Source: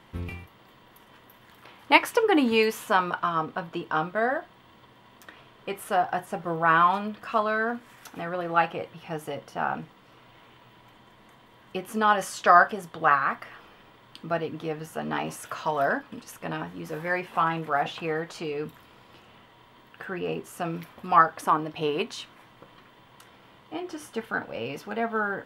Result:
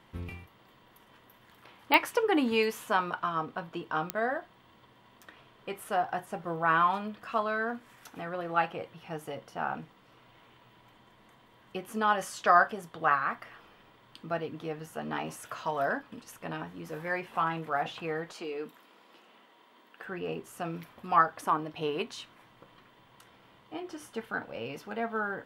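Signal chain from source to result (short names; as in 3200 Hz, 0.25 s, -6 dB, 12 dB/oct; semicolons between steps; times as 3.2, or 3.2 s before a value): 18.33–20.05 HPF 220 Hz 24 dB/oct; pops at 1.94/4.1, -5 dBFS; gain -5 dB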